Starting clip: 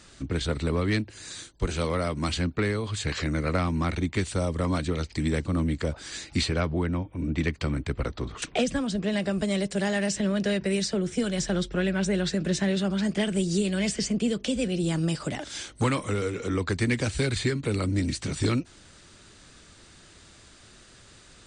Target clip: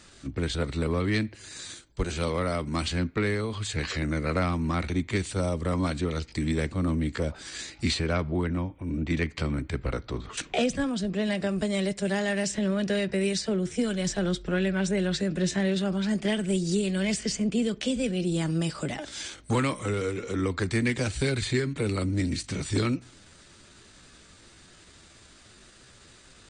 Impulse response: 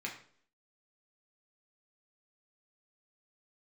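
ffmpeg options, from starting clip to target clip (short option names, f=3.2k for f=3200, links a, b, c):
-filter_complex "[0:a]atempo=0.81,asplit=2[a][b];[1:a]atrim=start_sample=2205[c];[b][c]afir=irnorm=-1:irlink=0,volume=-18.5dB[d];[a][d]amix=inputs=2:normalize=0,volume=-1dB"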